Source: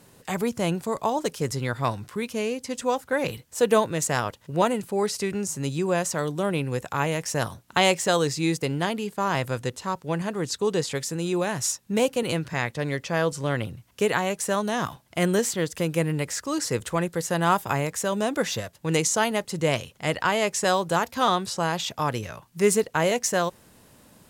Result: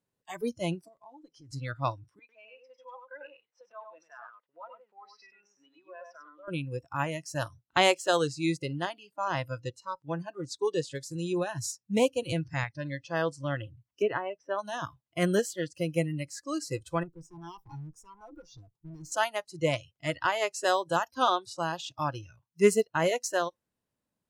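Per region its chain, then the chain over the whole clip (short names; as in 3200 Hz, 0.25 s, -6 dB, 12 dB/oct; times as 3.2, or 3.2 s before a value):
0.88–1.53 CVSD 64 kbps + high shelf 6300 Hz -7 dB + compressor 5:1, threshold -33 dBFS
2.19–6.48 compressor 12:1, threshold -24 dBFS + BPF 700–2400 Hz + echo 98 ms -3 dB
11.11–12.64 bell 100 Hz +8.5 dB 0.9 oct + mismatched tape noise reduction encoder only
14.02–14.59 LPF 4000 Hz + high shelf 2900 Hz -10 dB
17.03–19.12 tilt shelf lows +7 dB, about 1500 Hz + fixed phaser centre 390 Hz, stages 8 + tube stage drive 30 dB, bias 0.6
whole clip: spectral noise reduction 21 dB; high shelf 6300 Hz -5 dB; upward expander 1.5:1, over -37 dBFS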